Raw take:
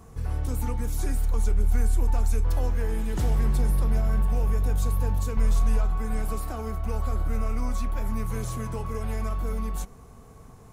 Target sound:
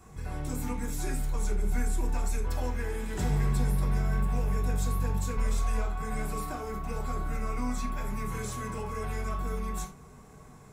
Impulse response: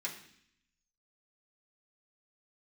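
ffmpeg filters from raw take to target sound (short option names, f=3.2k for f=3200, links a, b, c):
-filter_complex "[0:a]asettb=1/sr,asplit=3[a][b][c];[a]atrim=end=2.404[d];[b]atrim=start=2.4:end=4.58,asetpts=PTS-STARTPTS,afade=t=in:d=0.004:c=qsin,afade=t=out:st=2.176:d=0.004:c=qsin,aeval=exprs='sgn(val(0))*max(abs(val(0))-0.00447,0)':c=same[e];[c]atrim=start=4.576[f];[d][e]acrossfade=d=0.004:c1=hsin:c2=qsin[g];[g][f]acrossfade=d=0.004:c1=qsin:c2=hsin[h];[1:a]atrim=start_sample=2205,afade=t=out:st=0.14:d=0.01,atrim=end_sample=6615[i];[h][i]afir=irnorm=-1:irlink=0"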